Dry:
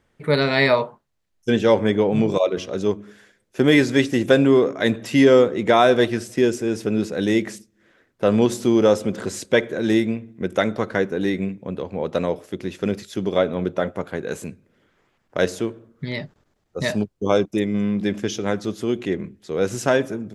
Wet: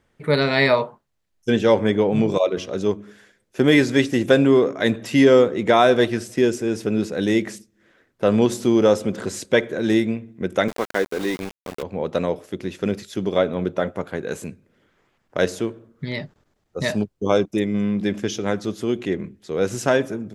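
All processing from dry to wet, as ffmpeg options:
-filter_complex "[0:a]asettb=1/sr,asplit=3[s0][s1][s2];[s0]atrim=end=10.684[s3];[s1]atrim=start=10.68:end=11.83,asetpts=PTS-STARTPTS,afade=t=in:d=0.004:c=qsin,afade=t=out:st=1.146:d=0.004:c=qsin,highpass=270,aeval=exprs='val(0)*gte(abs(val(0)),0.0355)':c=same[s4];[s2]atrim=start=11.826[s5];[s3][s4]acrossfade=d=0.004:c1=hsin:c2=qsin[s6];[s6][s5]acrossfade=d=0.004:c1=qsin:c2=hsin"

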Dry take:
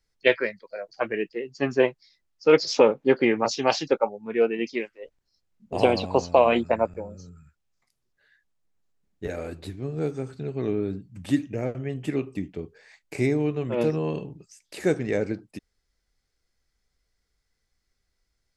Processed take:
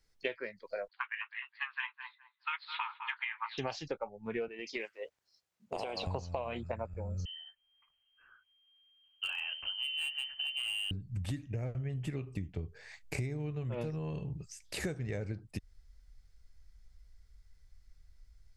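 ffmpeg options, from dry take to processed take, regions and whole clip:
-filter_complex "[0:a]asettb=1/sr,asplit=3[s0][s1][s2];[s0]atrim=end=0.884[s3];[s1]atrim=start=0.88:end=3.58,asetpts=PTS-STARTPTS,afade=t=in:d=0.004:c=qsin,afade=t=out:st=2.696:d=0.004:c=qsin,asuperpass=centerf=1900:order=20:qfactor=0.63,asplit=2[s4][s5];[s5]adelay=207,lowpass=f=1200:p=1,volume=0.282,asplit=2[s6][s7];[s7]adelay=207,lowpass=f=1200:p=1,volume=0.27,asplit=2[s8][s9];[s9]adelay=207,lowpass=f=1200:p=1,volume=0.27[s10];[s4][s6][s8][s10]amix=inputs=4:normalize=0,atrim=end_sample=119070[s11];[s2]atrim=start=3.576[s12];[s3][s11]acrossfade=d=0.004:c1=hsin:c2=qsin[s13];[s13][s12]acrossfade=d=0.004:c1=qsin:c2=hsin,asettb=1/sr,asplit=3[s14][s15][s16];[s14]atrim=end=4.484[s17];[s15]atrim=start=4.48:end=6.07,asetpts=PTS-STARTPTS,afade=t=in:d=0.004:c=qsin,afade=t=out:st=1.586:d=0.004:c=qsin,highpass=380,acompressor=threshold=0.0355:ratio=6:attack=3.2:release=140:knee=1:detection=peak[s18];[s16]atrim=start=6.066[s19];[s17][s18]acrossfade=d=0.004:c1=hsin:c2=qsin[s20];[s20][s19]acrossfade=d=0.004:c1=qsin:c2=hsin,asettb=1/sr,asplit=3[s21][s22][s23];[s21]atrim=end=7.254[s24];[s22]atrim=start=7.25:end=10.91,asetpts=PTS-STARTPTS,afade=t=in:d=0.004:c=qsin,afade=t=out:st=3.656:d=0.004:c=qsin,lowpass=f=2700:t=q:w=0.5098,lowpass=f=2700:t=q:w=0.6013,lowpass=f=2700:t=q:w=0.9,lowpass=f=2700:t=q:w=2.563,afreqshift=-3200,asoftclip=type=hard:threshold=0.0631[s25];[s23]atrim=start=10.906[s26];[s24][s25]acrossfade=d=0.004:c1=hsin:c2=qsin[s27];[s27][s26]acrossfade=d=0.004:c1=qsin:c2=hsin,asubboost=boost=9:cutoff=93,acompressor=threshold=0.0178:ratio=16,volume=1.19"

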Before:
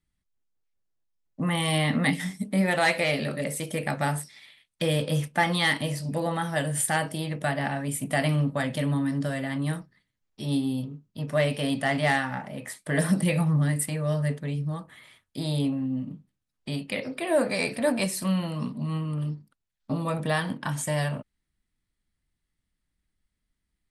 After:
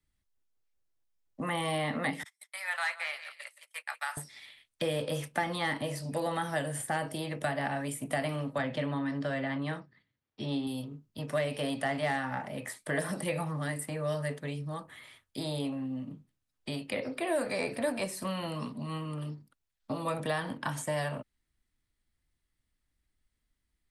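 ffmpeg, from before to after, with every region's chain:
-filter_complex "[0:a]asettb=1/sr,asplit=3[s0][s1][s2];[s0]atrim=end=2.234[s3];[s1]atrim=start=2.23:end=4.17,asetpts=PTS-STARTPTS,afade=t=in:d=0.004:c=qsin,afade=t=out:st=1.936:d=0.004:c=qsin,agate=range=0.0251:threshold=0.0355:ratio=16:release=100:detection=peak,highpass=f=1100:w=0.5412,highpass=f=1100:w=1.3066,aecho=1:1:172|344:0.158|0.0238,atrim=end_sample=85554[s4];[s2]atrim=start=4.166[s5];[s3][s4]acrossfade=d=0.004:c1=hsin:c2=qsin[s6];[s6][s5]acrossfade=d=0.004:c1=qsin:c2=hsin,asettb=1/sr,asplit=3[s7][s8][s9];[s7]atrim=end=8.584[s10];[s8]atrim=start=8.58:end=10.67,asetpts=PTS-STARTPTS,afade=t=in:d=0.004:c=qsin,afade=t=out:st=2.086:d=0.004:c=qsin,highpass=130,lowpass=3800,lowshelf=f=180:g=9.5[s11];[s9]atrim=start=10.666[s12];[s10][s11]acrossfade=d=0.004:c1=hsin:c2=qsin[s13];[s13][s12]acrossfade=d=0.004:c1=qsin:c2=hsin,equalizer=f=180:w=3:g=-7,acrossover=split=120|410|1600[s14][s15][s16][s17];[s14]acompressor=threshold=0.00251:ratio=4[s18];[s15]acompressor=threshold=0.0126:ratio=4[s19];[s16]acompressor=threshold=0.0282:ratio=4[s20];[s17]acompressor=threshold=0.01:ratio=4[s21];[s18][s19][s20][s21]amix=inputs=4:normalize=0"

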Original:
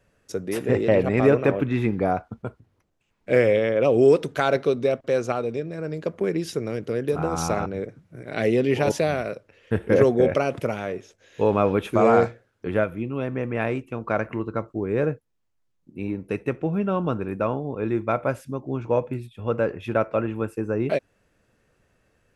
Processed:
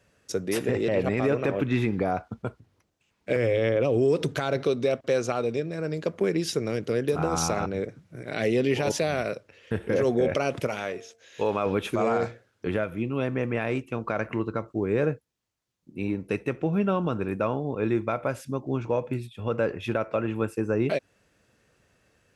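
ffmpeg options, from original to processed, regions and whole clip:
-filter_complex "[0:a]asettb=1/sr,asplit=3[s0][s1][s2];[s0]atrim=end=3.364[s3];[s1]atrim=start=3.36:end=4.64,asetpts=PTS-STARTPTS,afade=t=in:d=0.004:c=qsin,afade=t=out:st=1.276:d=0.004:c=qsin,lowshelf=f=270:g=10,bandreject=f=210:w=6,acompressor=threshold=0.0891:ratio=2:attack=3.2:release=140:knee=1:detection=peak[s4];[s2]atrim=start=4.636[s5];[s3][s4]acrossfade=d=0.004:c1=hsin:c2=qsin[s6];[s6][s5]acrossfade=d=0.004:c1=qsin:c2=hsin,asettb=1/sr,asplit=3[s7][s8][s9];[s7]atrim=end=10.674[s10];[s8]atrim=start=10.67:end=11.66,asetpts=PTS-STARTPTS,afade=t=in:d=0.004:c=qsin,afade=t=out:st=0.986:d=0.004:c=qsin,lowshelf=f=350:g=-8.5,bandreject=f=228.4:t=h:w=4,bandreject=f=456.8:t=h:w=4,bandreject=f=685.2:t=h:w=4[s11];[s9]atrim=start=11.656[s12];[s10][s11]acrossfade=d=0.004:c1=hsin:c2=qsin[s13];[s13][s12]acrossfade=d=0.004:c1=qsin:c2=hsin,highpass=51,equalizer=f=5200:w=0.55:g=5.5,alimiter=limit=0.188:level=0:latency=1:release=117"

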